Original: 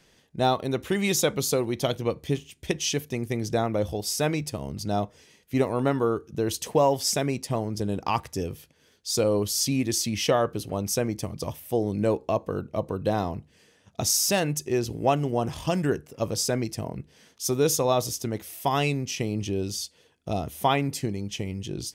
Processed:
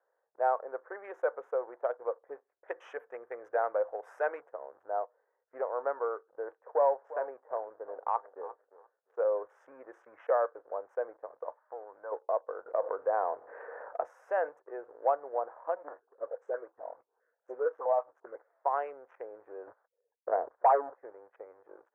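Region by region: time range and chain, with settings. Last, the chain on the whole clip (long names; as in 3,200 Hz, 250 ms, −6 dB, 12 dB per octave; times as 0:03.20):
0:02.66–0:04.42: mu-law and A-law mismatch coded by mu + high-shelf EQ 2,200 Hz +12 dB
0:06.43–0:09.41: high-pass filter 83 Hz 24 dB per octave + high-shelf EQ 4,400 Hz −9.5 dB + repeating echo 349 ms, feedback 21%, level −15 dB
0:11.57–0:12.12: flat-topped bell 1,200 Hz +11 dB 1.2 octaves + downward compressor 4 to 1, threshold −31 dBFS
0:12.66–0:14.49: high-pass filter 79 Hz + envelope flattener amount 70%
0:15.75–0:18.35: parametric band 330 Hz +3 dB 1.8 octaves + all-pass dispersion highs, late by 41 ms, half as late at 1,500 Hz + step-sequenced phaser 7.6 Hz 400–4,300 Hz
0:19.67–0:20.98: spectral envelope exaggerated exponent 3 + leveller curve on the samples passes 3 + high-frequency loss of the air 390 metres
whole clip: adaptive Wiener filter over 15 samples; leveller curve on the samples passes 1; elliptic band-pass filter 500–1,600 Hz, stop band 50 dB; level −6.5 dB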